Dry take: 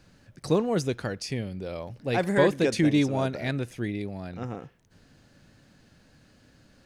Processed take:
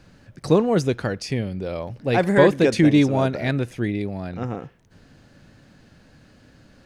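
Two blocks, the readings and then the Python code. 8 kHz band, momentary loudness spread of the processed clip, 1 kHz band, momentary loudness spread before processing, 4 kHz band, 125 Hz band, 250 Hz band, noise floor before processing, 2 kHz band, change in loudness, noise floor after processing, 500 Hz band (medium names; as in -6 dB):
+2.0 dB, 14 LU, +6.0 dB, 14 LU, +3.5 dB, +6.5 dB, +6.5 dB, -60 dBFS, +5.5 dB, +6.5 dB, -54 dBFS, +6.5 dB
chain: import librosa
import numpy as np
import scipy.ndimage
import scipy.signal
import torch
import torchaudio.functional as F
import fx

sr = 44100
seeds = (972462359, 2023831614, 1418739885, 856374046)

y = fx.high_shelf(x, sr, hz=4000.0, db=-6.0)
y = F.gain(torch.from_numpy(y), 6.5).numpy()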